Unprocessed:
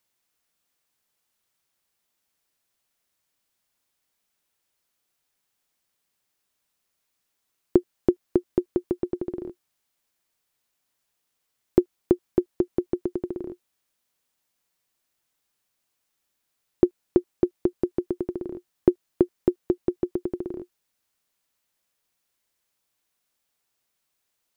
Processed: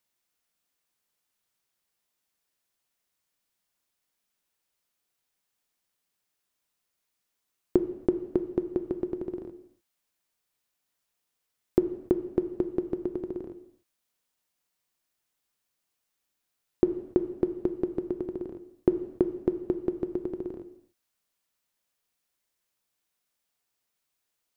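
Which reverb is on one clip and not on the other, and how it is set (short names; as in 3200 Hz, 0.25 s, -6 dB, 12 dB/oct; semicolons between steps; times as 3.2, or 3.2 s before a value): non-linear reverb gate 0.32 s falling, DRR 9 dB; gain -4 dB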